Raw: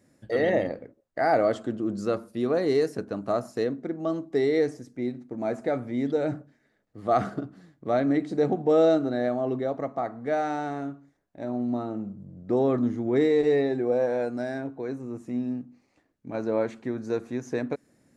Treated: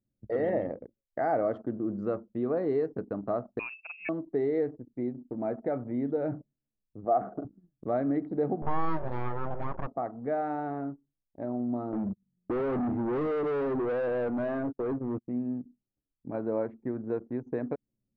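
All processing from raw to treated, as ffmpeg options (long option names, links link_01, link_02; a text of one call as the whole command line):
ffmpeg -i in.wav -filter_complex "[0:a]asettb=1/sr,asplit=3[link_01][link_02][link_03];[link_01]atrim=end=3.594[link_04];[link_02]atrim=start=3.59:end=4.09,asetpts=PTS-STARTPTS,afade=type=in:duration=0.004:curve=qsin,afade=type=out:start_time=0.496:duration=0.004:curve=qsin,lowpass=frequency=2500:width_type=q:width=0.5098,lowpass=frequency=2500:width_type=q:width=0.6013,lowpass=frequency=2500:width_type=q:width=0.9,lowpass=frequency=2500:width_type=q:width=2.563,afreqshift=-2900,lowshelf=frequency=220:gain=10.5[link_05];[link_03]atrim=start=4.086[link_06];[link_04][link_05]acrossfade=duration=0.004:curve1=hsin:curve2=qsin[link_07];[link_07][link_06]acrossfade=duration=0.004:curve1=qsin:curve2=hsin,asettb=1/sr,asplit=3[link_08][link_09][link_10];[link_08]atrim=end=7.054[link_11];[link_09]atrim=start=7.05:end=7.45,asetpts=PTS-STARTPTS,afade=type=in:duration=0.004:curve=qsin,afade=type=out:start_time=0.396:duration=0.004:curve=qsin,bandpass=frequency=560:width_type=q:width=0.64,equalizer=frequency=710:width_type=o:width=0.37:gain=5.5[link_12];[link_10]atrim=start=7.446[link_13];[link_11][link_12]acrossfade=duration=0.004:curve1=hsin:curve2=qsin[link_14];[link_14][link_13]acrossfade=duration=0.004:curve1=qsin:curve2=hsin,asettb=1/sr,asplit=3[link_15][link_16][link_17];[link_15]atrim=end=8.624[link_18];[link_16]atrim=start=8.62:end=9.87,asetpts=PTS-STARTPTS,afade=type=in:duration=0.004:curve=qsin,afade=type=out:start_time=1.246:duration=0.004:curve=qsin,equalizer=frequency=2900:width_type=o:width=3:gain=6,acompressor=mode=upward:threshold=-23dB:ratio=2.5:attack=3.2:release=140:knee=2.83:detection=peak,aeval=exprs='abs(val(0))':channel_layout=same[link_19];[link_17]atrim=start=9.866[link_20];[link_18][link_19]acrossfade=duration=0.004:curve1=hsin:curve2=qsin[link_21];[link_21][link_20]acrossfade=duration=0.004:curve1=qsin:curve2=hsin,asettb=1/sr,asplit=3[link_22][link_23][link_24];[link_22]atrim=end=11.924[link_25];[link_23]atrim=start=11.92:end=15.28,asetpts=PTS-STARTPTS,afade=type=in:duration=0.004:curve=qsin,afade=type=out:start_time=3.356:duration=0.004:curve=qsin,agate=range=-22dB:threshold=-39dB:ratio=16:release=100:detection=peak,acontrast=83,volume=25dB,asoftclip=hard,volume=-25dB[link_26];[link_24]atrim=start=15.276[link_27];[link_25][link_26]acrossfade=duration=0.004:curve1=hsin:curve2=qsin[link_28];[link_28][link_27]acrossfade=duration=0.004:curve1=qsin:curve2=hsin,anlmdn=0.398,lowpass=1300,acompressor=threshold=-33dB:ratio=1.5" out.wav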